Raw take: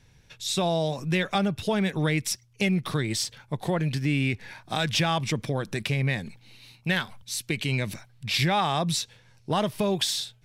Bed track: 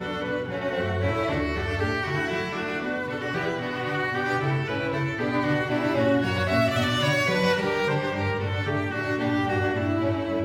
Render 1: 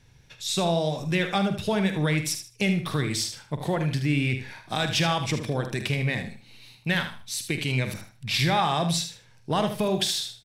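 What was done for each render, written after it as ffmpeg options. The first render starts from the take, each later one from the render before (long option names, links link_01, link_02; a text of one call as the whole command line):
ffmpeg -i in.wav -filter_complex "[0:a]asplit=2[link_01][link_02];[link_02]adelay=47,volume=-11.5dB[link_03];[link_01][link_03]amix=inputs=2:normalize=0,asplit=2[link_04][link_05];[link_05]aecho=0:1:77|154|231:0.335|0.077|0.0177[link_06];[link_04][link_06]amix=inputs=2:normalize=0" out.wav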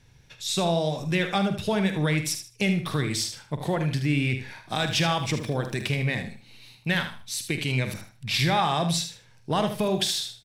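ffmpeg -i in.wav -filter_complex "[0:a]asettb=1/sr,asplit=3[link_01][link_02][link_03];[link_01]atrim=end=4.774[link_04];[link_02]atrim=start=4.77:end=6.04,asetpts=PTS-STARTPTS,afade=type=in:duration=0.004:curve=qsin,afade=type=out:start_time=1.266:duration=0.004:curve=qsin,aeval=exprs='val(0)*gte(abs(val(0)),0.00335)':channel_layout=same[link_05];[link_03]atrim=start=6.036[link_06];[link_04][link_05]acrossfade=duration=0.004:curve1=hsin:curve2=qsin[link_07];[link_07][link_06]acrossfade=duration=0.004:curve1=qsin:curve2=hsin" out.wav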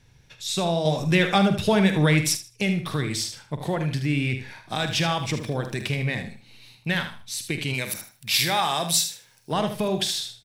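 ffmpeg -i in.wav -filter_complex "[0:a]asettb=1/sr,asplit=3[link_01][link_02][link_03];[link_01]atrim=end=0.854[link_04];[link_02]atrim=start=0.85:end=2.37,asetpts=PTS-STARTPTS,afade=type=in:duration=0.004:curve=qsin,afade=type=out:start_time=1.516:duration=0.004:curve=qsin,acontrast=33[link_05];[link_03]atrim=start=2.366[link_06];[link_04][link_05]acrossfade=duration=0.004:curve1=hsin:curve2=qsin[link_07];[link_07][link_06]acrossfade=duration=0.004:curve1=qsin:curve2=hsin,asplit=3[link_08][link_09][link_10];[link_08]afade=type=out:start_time=7.73:duration=0.02[link_11];[link_09]aemphasis=mode=production:type=bsi,afade=type=in:start_time=7.73:duration=0.02,afade=type=out:start_time=9.51:duration=0.02[link_12];[link_10]afade=type=in:start_time=9.51:duration=0.02[link_13];[link_11][link_12][link_13]amix=inputs=3:normalize=0" out.wav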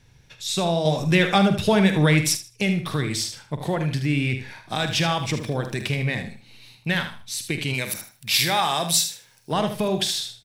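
ffmpeg -i in.wav -af "volume=1.5dB" out.wav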